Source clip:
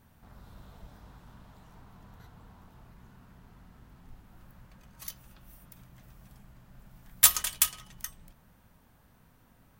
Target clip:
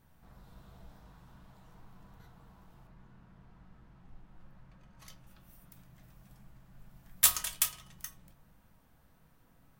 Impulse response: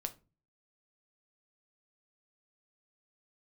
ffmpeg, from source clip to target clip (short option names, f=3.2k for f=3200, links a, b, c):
-filter_complex "[0:a]asettb=1/sr,asplit=3[a][b][c];[a]atrim=end=2.874[d];[b]atrim=start=2.87:end=5.27,asetpts=PTS-STARTPTS,afade=t=in:d=0.004:c=qsin,afade=t=out:st=2.396:d=0.004:c=qsin,aemphasis=mode=reproduction:type=50fm[e];[c]atrim=start=5.266[f];[d][e]acrossfade=d=0.004:c1=hsin:c2=qsin[g];[g][f]acrossfade=d=0.004:c1=qsin:c2=hsin[h];[1:a]atrim=start_sample=2205[i];[h][i]afir=irnorm=-1:irlink=0,volume=-3dB"